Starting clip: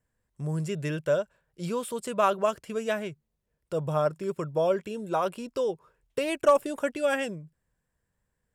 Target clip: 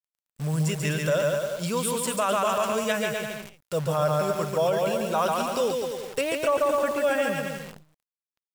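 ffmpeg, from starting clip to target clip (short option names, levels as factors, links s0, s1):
-af "asetnsamples=n=441:p=0,asendcmd='6.21 highshelf g -3.5',highshelf=f=2300:g=7.5,aecho=1:1:140|252|341.6|413.3|470.6:0.631|0.398|0.251|0.158|0.1,acrusher=bits=8:dc=4:mix=0:aa=0.000001,alimiter=limit=0.126:level=0:latency=1:release=19,equalizer=f=350:t=o:w=0.55:g=-7.5,volume=1.5"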